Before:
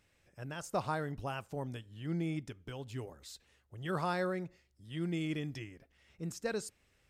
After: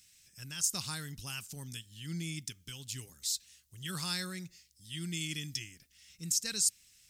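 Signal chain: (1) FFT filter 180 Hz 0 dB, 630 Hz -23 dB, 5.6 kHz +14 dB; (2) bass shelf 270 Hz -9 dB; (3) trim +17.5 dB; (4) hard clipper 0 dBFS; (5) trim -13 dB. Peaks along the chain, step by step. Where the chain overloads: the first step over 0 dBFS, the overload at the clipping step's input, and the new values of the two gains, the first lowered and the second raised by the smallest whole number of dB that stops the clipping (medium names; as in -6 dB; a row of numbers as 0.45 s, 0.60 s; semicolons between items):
-19.5 dBFS, -19.5 dBFS, -2.0 dBFS, -2.0 dBFS, -15.0 dBFS; nothing clips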